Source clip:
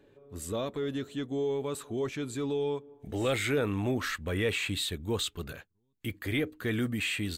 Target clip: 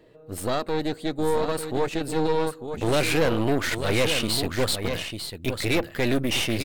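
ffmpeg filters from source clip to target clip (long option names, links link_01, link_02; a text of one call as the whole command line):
ffmpeg -i in.wav -af "aecho=1:1:995:0.422,aeval=exprs='0.126*(cos(1*acos(clip(val(0)/0.126,-1,1)))-cos(1*PI/2))+0.0224*(cos(6*acos(clip(val(0)/0.126,-1,1)))-cos(6*PI/2))':channel_layout=same,asetrate=48951,aresample=44100,volume=5.5dB" out.wav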